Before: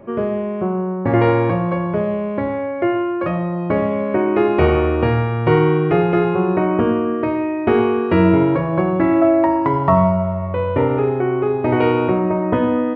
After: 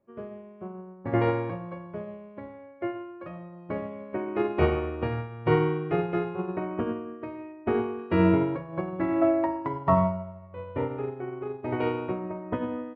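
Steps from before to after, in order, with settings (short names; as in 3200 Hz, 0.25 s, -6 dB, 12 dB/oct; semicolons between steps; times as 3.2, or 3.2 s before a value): 7.52–7.99 high shelf 2800 Hz -8 dB; upward expander 2.5:1, over -28 dBFS; gain -6 dB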